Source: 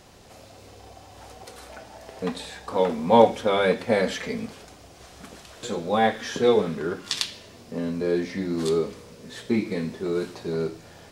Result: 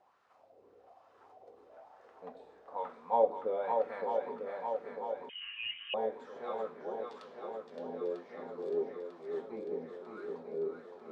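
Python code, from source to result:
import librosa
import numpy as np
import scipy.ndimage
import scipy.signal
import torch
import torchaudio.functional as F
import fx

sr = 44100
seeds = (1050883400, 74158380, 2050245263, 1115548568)

y = fx.wah_lfo(x, sr, hz=1.1, low_hz=400.0, high_hz=1300.0, q=3.4)
y = fx.echo_swing(y, sr, ms=946, ratio=1.5, feedback_pct=59, wet_db=-5.0)
y = fx.freq_invert(y, sr, carrier_hz=3400, at=(5.29, 5.94))
y = F.gain(torch.from_numpy(y), -7.5).numpy()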